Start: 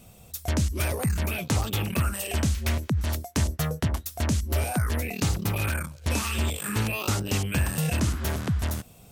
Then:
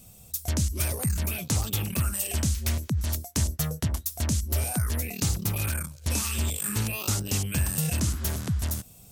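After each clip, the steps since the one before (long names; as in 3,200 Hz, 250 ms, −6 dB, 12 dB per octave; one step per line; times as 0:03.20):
bass and treble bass +5 dB, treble +11 dB
level −6 dB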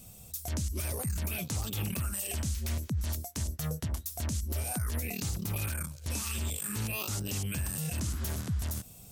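downward compressor, threshold −27 dBFS, peak gain reduction 7 dB
brickwall limiter −24 dBFS, peak gain reduction 9 dB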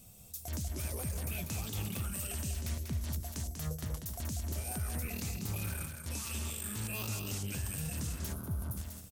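loudspeakers that aren't time-aligned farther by 66 metres −6 dB, 91 metres −11 dB
gain on a spectral selection 0:08.33–0:08.77, 1,600–9,000 Hz −13 dB
level −5 dB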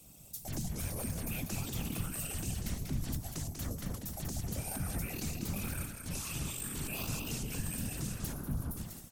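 echo through a band-pass that steps 108 ms, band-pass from 800 Hz, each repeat 1.4 octaves, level −10 dB
random phases in short frames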